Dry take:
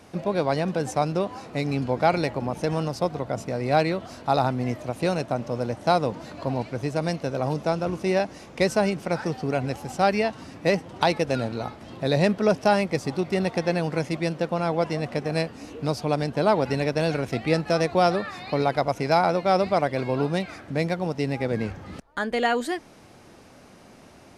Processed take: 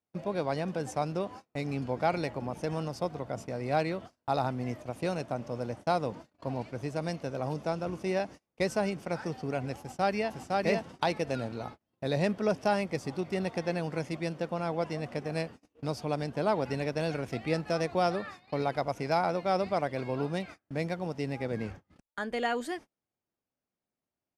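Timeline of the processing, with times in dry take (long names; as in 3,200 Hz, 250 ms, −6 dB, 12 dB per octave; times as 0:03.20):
0:09.79–0:10.49: delay throw 510 ms, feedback 10%, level −1.5 dB
whole clip: notch filter 4,000 Hz, Q 17; noise gate −35 dBFS, range −35 dB; level −7.5 dB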